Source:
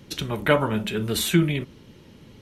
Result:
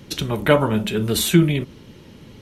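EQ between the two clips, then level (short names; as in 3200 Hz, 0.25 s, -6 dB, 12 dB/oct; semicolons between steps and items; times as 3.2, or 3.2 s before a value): dynamic EQ 1800 Hz, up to -4 dB, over -38 dBFS, Q 0.81; +5.0 dB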